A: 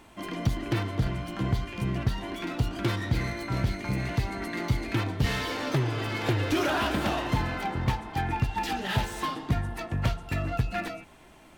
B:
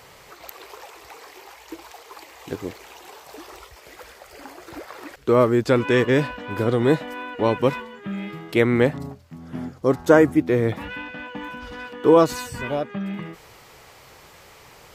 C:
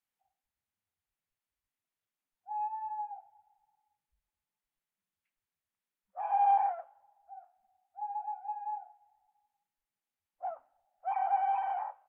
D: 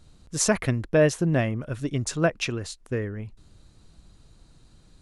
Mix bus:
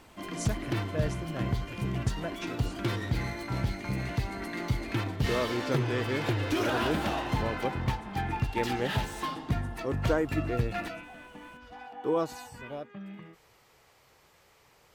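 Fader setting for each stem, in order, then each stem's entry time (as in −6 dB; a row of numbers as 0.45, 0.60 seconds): −3.0, −14.0, −15.5, −15.0 decibels; 0.00, 0.00, 0.65, 0.00 seconds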